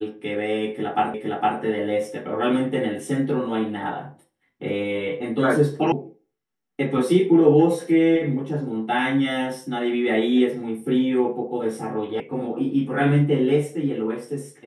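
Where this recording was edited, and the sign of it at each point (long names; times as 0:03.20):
0:01.14: the same again, the last 0.46 s
0:05.92: cut off before it has died away
0:12.20: cut off before it has died away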